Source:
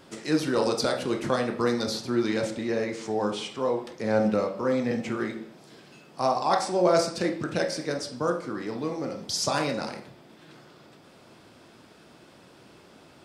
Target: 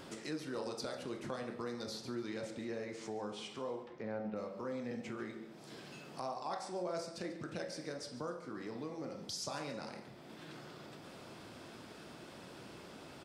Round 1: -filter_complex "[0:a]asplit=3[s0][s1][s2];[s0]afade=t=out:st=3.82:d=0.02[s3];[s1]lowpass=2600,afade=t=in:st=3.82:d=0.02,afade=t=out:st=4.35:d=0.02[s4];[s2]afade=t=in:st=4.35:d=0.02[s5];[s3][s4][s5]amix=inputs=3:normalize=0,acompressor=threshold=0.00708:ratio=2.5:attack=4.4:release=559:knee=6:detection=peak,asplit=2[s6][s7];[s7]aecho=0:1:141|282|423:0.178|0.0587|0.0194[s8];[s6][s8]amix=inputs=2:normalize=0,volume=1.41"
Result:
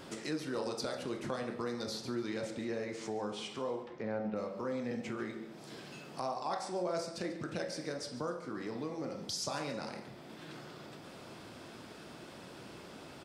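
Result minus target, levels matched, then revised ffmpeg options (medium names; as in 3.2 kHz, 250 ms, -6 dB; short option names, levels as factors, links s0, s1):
compression: peak gain reduction -4 dB
-filter_complex "[0:a]asplit=3[s0][s1][s2];[s0]afade=t=out:st=3.82:d=0.02[s3];[s1]lowpass=2600,afade=t=in:st=3.82:d=0.02,afade=t=out:st=4.35:d=0.02[s4];[s2]afade=t=in:st=4.35:d=0.02[s5];[s3][s4][s5]amix=inputs=3:normalize=0,acompressor=threshold=0.00335:ratio=2.5:attack=4.4:release=559:knee=6:detection=peak,asplit=2[s6][s7];[s7]aecho=0:1:141|282|423:0.178|0.0587|0.0194[s8];[s6][s8]amix=inputs=2:normalize=0,volume=1.41"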